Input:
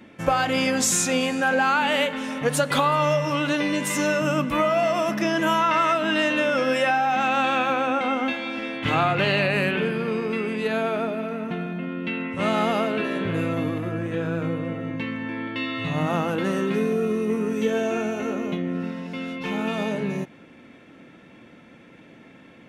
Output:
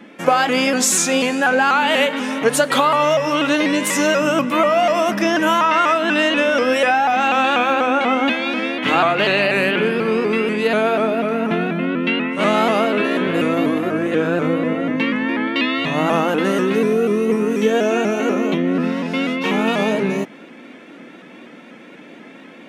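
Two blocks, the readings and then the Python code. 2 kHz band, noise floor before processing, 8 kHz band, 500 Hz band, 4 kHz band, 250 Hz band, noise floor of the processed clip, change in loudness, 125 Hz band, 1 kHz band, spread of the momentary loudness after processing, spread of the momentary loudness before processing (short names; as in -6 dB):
+6.5 dB, -49 dBFS, +5.5 dB, +7.0 dB, +6.5 dB, +6.5 dB, -41 dBFS, +6.5 dB, +0.5 dB, +6.0 dB, 5 LU, 9 LU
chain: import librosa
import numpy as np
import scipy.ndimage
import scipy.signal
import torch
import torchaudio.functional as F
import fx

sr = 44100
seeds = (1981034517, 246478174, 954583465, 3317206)

p1 = scipy.signal.sosfilt(scipy.signal.butter(4, 200.0, 'highpass', fs=sr, output='sos'), x)
p2 = fx.rider(p1, sr, range_db=10, speed_s=0.5)
p3 = p1 + (p2 * librosa.db_to_amplitude(1.5))
y = fx.vibrato_shape(p3, sr, shape='saw_up', rate_hz=4.1, depth_cents=100.0)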